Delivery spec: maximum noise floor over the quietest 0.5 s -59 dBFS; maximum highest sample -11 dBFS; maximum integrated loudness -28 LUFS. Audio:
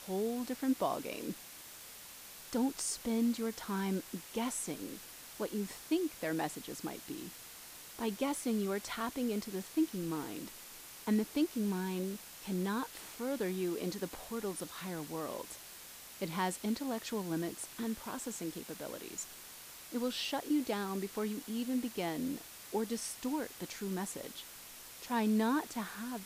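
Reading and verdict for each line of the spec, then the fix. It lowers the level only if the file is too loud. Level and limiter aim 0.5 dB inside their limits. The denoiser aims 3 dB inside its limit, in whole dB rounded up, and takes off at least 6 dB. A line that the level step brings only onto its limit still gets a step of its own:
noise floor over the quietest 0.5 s -51 dBFS: fail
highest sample -21.0 dBFS: pass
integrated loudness -37.5 LUFS: pass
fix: noise reduction 11 dB, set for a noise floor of -51 dBFS

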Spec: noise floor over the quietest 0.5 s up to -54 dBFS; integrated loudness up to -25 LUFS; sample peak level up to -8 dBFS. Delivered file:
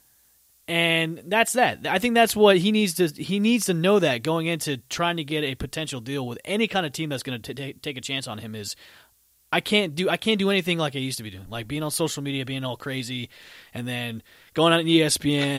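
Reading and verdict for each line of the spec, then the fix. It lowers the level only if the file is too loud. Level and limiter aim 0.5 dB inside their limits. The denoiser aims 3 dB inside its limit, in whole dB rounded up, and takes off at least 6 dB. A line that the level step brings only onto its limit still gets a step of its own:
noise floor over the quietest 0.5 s -61 dBFS: pass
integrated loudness -23.5 LUFS: fail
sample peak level -4.5 dBFS: fail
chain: trim -2 dB; peak limiter -8.5 dBFS

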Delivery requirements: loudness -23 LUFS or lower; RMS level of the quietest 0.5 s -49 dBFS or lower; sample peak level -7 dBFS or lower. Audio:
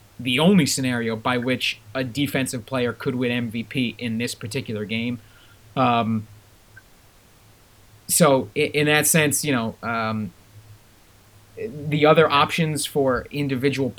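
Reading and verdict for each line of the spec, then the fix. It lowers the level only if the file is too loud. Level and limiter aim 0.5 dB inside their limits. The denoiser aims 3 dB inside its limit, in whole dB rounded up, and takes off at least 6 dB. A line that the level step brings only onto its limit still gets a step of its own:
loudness -21.5 LUFS: fail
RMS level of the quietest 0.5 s -52 dBFS: pass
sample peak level -3.5 dBFS: fail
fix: trim -2 dB; peak limiter -7.5 dBFS

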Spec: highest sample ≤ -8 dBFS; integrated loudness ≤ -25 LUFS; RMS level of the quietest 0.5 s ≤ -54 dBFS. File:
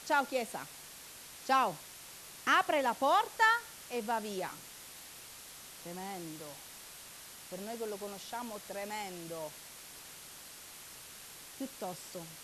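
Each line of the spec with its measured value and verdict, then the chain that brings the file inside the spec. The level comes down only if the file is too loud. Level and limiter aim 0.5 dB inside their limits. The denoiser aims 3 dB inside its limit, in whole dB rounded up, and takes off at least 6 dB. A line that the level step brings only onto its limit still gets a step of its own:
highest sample -15.0 dBFS: pass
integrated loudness -34.5 LUFS: pass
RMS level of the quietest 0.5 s -51 dBFS: fail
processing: noise reduction 6 dB, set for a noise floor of -51 dBFS

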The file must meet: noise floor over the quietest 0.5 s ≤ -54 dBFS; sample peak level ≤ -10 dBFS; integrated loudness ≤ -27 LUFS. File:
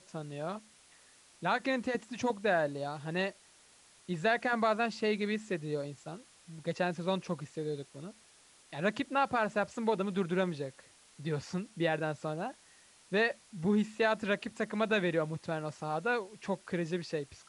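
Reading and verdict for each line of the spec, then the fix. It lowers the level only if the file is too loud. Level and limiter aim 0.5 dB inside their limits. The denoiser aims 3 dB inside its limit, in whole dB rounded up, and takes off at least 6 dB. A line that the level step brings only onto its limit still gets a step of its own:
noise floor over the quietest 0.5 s -62 dBFS: pass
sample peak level -17.0 dBFS: pass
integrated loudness -33.5 LUFS: pass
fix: none needed

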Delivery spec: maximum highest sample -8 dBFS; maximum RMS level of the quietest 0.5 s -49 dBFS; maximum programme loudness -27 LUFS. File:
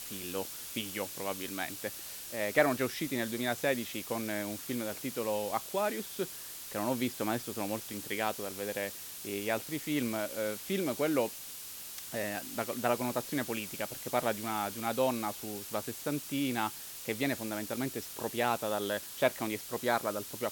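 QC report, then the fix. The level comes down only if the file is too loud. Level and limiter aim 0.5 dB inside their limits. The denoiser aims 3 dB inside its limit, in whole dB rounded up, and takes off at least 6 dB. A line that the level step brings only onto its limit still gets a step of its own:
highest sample -12.0 dBFS: pass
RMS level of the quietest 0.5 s -45 dBFS: fail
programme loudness -34.0 LUFS: pass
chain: noise reduction 7 dB, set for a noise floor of -45 dBFS

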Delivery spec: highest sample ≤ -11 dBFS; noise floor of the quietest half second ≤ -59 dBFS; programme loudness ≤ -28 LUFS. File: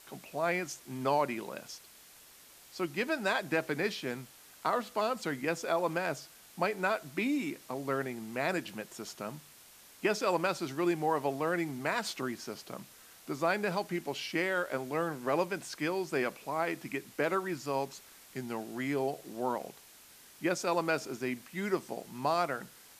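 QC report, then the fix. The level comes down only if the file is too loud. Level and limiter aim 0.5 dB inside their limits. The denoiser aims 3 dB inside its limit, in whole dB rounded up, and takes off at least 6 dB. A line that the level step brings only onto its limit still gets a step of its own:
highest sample -16.5 dBFS: pass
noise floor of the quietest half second -56 dBFS: fail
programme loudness -34.0 LUFS: pass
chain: noise reduction 6 dB, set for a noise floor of -56 dBFS

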